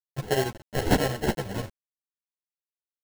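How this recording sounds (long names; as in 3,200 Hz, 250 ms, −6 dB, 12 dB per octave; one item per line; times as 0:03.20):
aliases and images of a low sample rate 1,200 Hz, jitter 0%
chopped level 11 Hz, depth 60%, duty 70%
a quantiser's noise floor 8 bits, dither none
a shimmering, thickened sound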